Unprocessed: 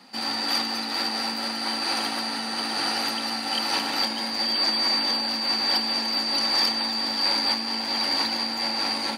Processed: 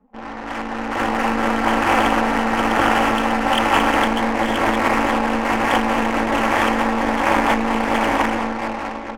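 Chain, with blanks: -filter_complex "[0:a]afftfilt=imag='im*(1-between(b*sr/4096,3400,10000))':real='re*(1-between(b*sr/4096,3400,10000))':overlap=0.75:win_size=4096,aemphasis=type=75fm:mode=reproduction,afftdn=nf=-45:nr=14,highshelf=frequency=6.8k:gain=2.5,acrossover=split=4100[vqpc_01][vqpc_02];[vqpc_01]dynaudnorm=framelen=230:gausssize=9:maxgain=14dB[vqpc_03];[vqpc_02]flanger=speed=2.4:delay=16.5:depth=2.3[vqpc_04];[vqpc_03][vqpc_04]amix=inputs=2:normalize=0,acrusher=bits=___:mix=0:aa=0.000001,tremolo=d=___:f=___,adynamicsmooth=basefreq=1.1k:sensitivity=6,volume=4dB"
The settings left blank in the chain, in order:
11, 0.857, 240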